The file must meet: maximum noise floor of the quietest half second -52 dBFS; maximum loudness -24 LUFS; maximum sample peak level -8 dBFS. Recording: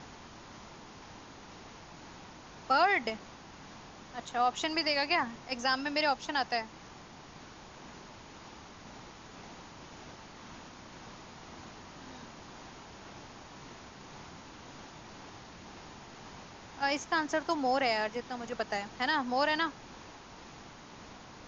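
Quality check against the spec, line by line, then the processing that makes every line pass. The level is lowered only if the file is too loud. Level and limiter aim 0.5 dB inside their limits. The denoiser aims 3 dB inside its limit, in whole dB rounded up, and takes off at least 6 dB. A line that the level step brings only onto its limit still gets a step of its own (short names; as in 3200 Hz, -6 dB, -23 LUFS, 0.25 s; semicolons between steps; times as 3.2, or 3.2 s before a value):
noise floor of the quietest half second -51 dBFS: fail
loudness -31.0 LUFS: OK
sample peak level -15.5 dBFS: OK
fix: denoiser 6 dB, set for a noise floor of -51 dBFS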